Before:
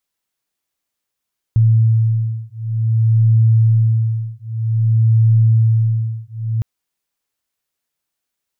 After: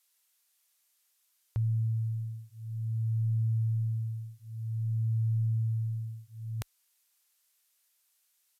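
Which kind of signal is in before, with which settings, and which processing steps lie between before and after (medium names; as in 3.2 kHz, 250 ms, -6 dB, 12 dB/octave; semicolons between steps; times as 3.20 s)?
beating tones 112 Hz, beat 0.53 Hz, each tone -14 dBFS 5.06 s
peaking EQ 190 Hz -12.5 dB 1.8 oct; resampled via 32 kHz; tilt EQ +3 dB/octave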